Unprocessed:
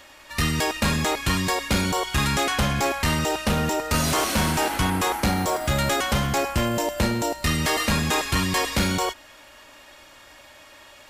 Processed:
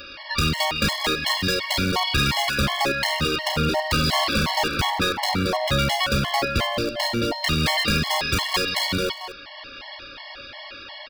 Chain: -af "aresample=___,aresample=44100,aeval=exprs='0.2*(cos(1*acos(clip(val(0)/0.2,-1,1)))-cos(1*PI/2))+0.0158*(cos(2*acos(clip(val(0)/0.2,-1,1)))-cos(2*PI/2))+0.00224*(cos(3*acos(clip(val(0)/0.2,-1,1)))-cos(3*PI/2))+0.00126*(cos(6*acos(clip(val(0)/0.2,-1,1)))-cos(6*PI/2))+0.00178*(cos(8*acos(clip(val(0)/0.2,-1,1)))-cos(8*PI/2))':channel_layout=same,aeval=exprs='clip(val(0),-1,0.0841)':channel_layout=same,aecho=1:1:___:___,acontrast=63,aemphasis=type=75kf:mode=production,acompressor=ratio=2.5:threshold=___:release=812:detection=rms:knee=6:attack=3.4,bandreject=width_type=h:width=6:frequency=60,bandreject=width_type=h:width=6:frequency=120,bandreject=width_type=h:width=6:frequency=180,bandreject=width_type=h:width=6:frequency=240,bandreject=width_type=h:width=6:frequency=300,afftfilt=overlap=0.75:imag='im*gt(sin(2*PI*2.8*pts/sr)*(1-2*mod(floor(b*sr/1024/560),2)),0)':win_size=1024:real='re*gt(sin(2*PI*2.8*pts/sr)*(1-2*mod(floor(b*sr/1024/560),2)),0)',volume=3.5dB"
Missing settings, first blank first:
11025, 226, 0.188, -20dB